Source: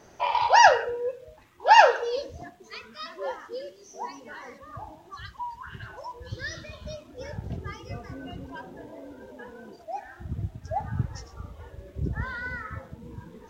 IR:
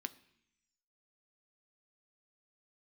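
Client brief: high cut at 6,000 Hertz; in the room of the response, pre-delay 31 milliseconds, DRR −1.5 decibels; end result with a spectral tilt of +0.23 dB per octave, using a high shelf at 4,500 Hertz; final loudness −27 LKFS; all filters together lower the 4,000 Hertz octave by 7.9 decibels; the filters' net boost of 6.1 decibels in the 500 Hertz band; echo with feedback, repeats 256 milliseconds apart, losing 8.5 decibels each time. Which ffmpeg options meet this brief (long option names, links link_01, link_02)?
-filter_complex "[0:a]lowpass=6000,equalizer=frequency=500:width_type=o:gain=7.5,equalizer=frequency=4000:width_type=o:gain=-8.5,highshelf=frequency=4500:gain=-6.5,aecho=1:1:256|512|768|1024:0.376|0.143|0.0543|0.0206,asplit=2[link_01][link_02];[1:a]atrim=start_sample=2205,adelay=31[link_03];[link_02][link_03]afir=irnorm=-1:irlink=0,volume=3.5dB[link_04];[link_01][link_04]amix=inputs=2:normalize=0,volume=-8dB"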